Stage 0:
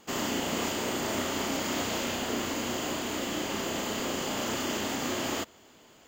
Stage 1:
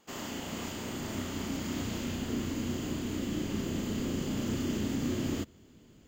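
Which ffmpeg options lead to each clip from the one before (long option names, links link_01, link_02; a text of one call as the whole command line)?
ffmpeg -i in.wav -af "asubboost=boost=10:cutoff=250,volume=-8.5dB" out.wav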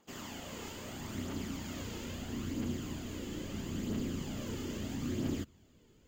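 ffmpeg -i in.wav -af "aphaser=in_gain=1:out_gain=1:delay=2.4:decay=0.41:speed=0.76:type=triangular,volume=-6dB" out.wav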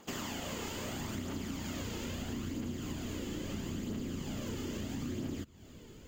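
ffmpeg -i in.wav -af "acompressor=threshold=-48dB:ratio=6,volume=11.5dB" out.wav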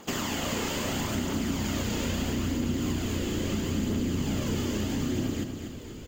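ffmpeg -i in.wav -af "aecho=1:1:242|484|726|968|1210:0.447|0.201|0.0905|0.0407|0.0183,volume=8.5dB" out.wav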